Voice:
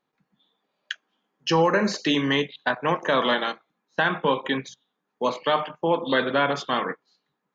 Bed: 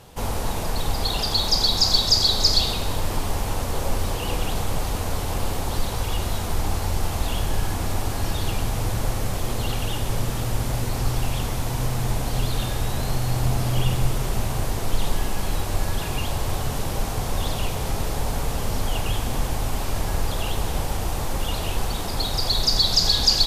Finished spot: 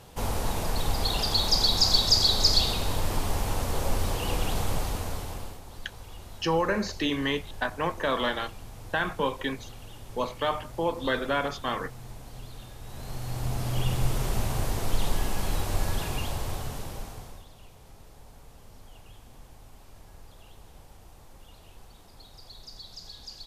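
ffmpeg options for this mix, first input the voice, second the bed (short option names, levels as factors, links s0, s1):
-filter_complex "[0:a]adelay=4950,volume=0.531[s0];[1:a]volume=4.22,afade=t=out:st=4.7:d=0.9:silence=0.158489,afade=t=in:st=12.81:d=1.4:silence=0.16788,afade=t=out:st=15.92:d=1.53:silence=0.0794328[s1];[s0][s1]amix=inputs=2:normalize=0"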